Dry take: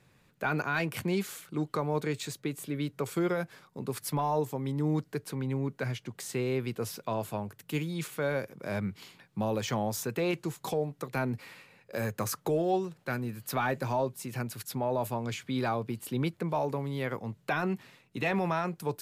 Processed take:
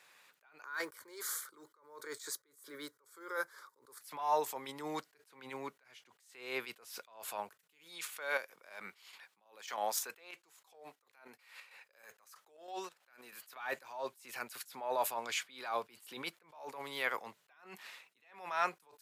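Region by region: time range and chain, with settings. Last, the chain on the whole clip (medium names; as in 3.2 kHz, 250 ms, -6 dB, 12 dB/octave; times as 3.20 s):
0.64–4.01 s: bass shelf 500 Hz +3 dB + static phaser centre 720 Hz, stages 6 + short-mantissa float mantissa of 6-bit
7.84–13.56 s: high-pass 290 Hz 6 dB/octave + square tremolo 3.1 Hz, depth 60%, duty 65%
whole clip: high-pass 910 Hz 12 dB/octave; attacks held to a fixed rise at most 100 dB/s; trim +6 dB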